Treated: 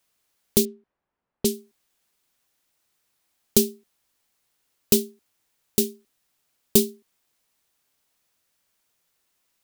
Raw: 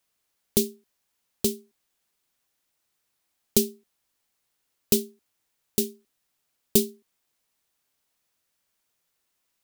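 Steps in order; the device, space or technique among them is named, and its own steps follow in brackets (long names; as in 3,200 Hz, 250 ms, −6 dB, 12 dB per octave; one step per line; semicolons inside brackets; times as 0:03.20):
parallel distortion (in parallel at −9 dB: hard clipping −17 dBFS, distortion −9 dB)
0:00.65–0:01.54: on the sum: low-pass that shuts in the quiet parts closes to 1,200 Hz, open at −20 dBFS
level +1 dB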